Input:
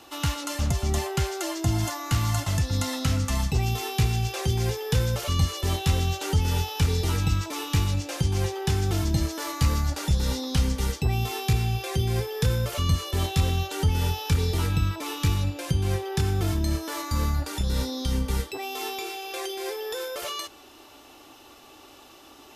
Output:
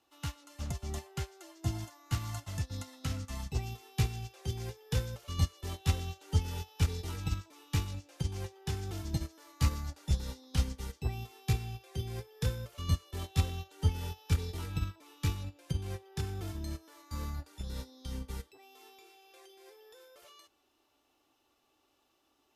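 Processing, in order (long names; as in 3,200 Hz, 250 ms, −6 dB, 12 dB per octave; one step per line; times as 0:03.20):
expander for the loud parts 2.5 to 1, over −31 dBFS
level −3.5 dB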